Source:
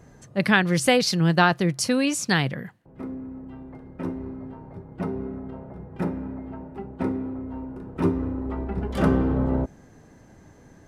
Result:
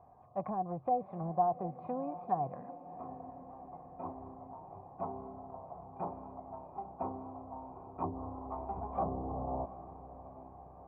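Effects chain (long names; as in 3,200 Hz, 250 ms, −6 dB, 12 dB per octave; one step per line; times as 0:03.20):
hearing-aid frequency compression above 3,100 Hz 1.5 to 1
parametric band 89 Hz +8 dB 0.58 octaves
in parallel at −8 dB: wave folding −16.5 dBFS
on the sum: treble cut that deepens with the level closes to 470 Hz, closed at −14 dBFS
formant resonators in series a
on a send: feedback delay with all-pass diffusion 744 ms, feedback 61%, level −14 dB
on the sum: level +5 dB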